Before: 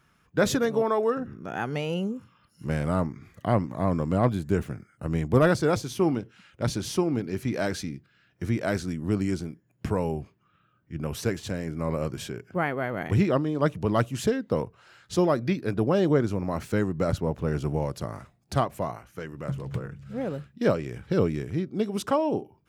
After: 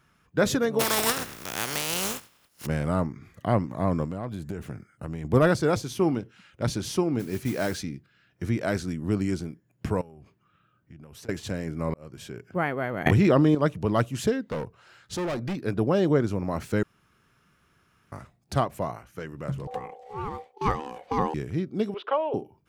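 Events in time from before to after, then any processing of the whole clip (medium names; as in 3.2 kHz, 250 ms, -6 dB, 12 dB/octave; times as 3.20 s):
0.79–2.65 s: spectral contrast reduction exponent 0.26
4.05–5.25 s: compression, threshold -29 dBFS
7.19–7.79 s: modulation noise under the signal 18 dB
10.01–11.29 s: compression 20:1, threshold -42 dBFS
11.94–12.52 s: fade in
13.06–13.55 s: level flattener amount 100%
14.51–15.63 s: overload inside the chain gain 27 dB
16.83–18.12 s: room tone
19.67–21.34 s: ring modulator 630 Hz
21.94–22.34 s: elliptic band-pass 410–3300 Hz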